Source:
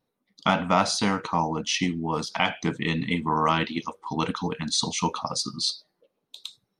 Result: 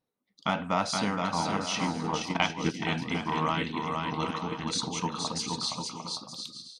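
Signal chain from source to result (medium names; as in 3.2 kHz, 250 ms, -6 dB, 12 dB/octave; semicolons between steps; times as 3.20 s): bouncing-ball echo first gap 470 ms, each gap 0.6×, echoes 5; Chebyshev shaper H 2 -28 dB, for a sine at -5 dBFS; 2.01–2.75 s: transient shaper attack +7 dB, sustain -6 dB; trim -6.5 dB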